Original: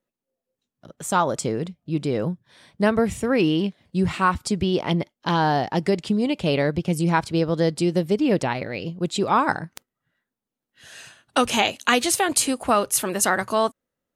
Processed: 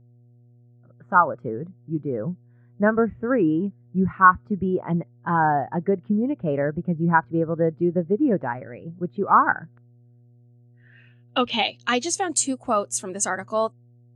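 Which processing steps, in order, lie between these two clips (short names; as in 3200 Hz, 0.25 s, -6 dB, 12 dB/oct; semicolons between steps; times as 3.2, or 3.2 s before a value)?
low-pass sweep 1500 Hz -> 7500 Hz, 10.61–12.21; buzz 120 Hz, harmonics 6, -42 dBFS -8 dB/oct; spectral expander 1.5:1; gain -1 dB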